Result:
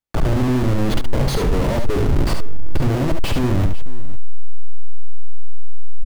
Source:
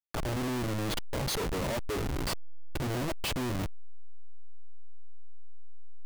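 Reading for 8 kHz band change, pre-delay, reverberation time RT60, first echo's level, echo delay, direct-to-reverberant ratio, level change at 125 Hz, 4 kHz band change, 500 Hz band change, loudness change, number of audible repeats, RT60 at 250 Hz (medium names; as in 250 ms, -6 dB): +4.0 dB, no reverb, no reverb, -6.0 dB, 71 ms, no reverb, +16.0 dB, +5.5 dB, +12.0 dB, +12.5 dB, 2, no reverb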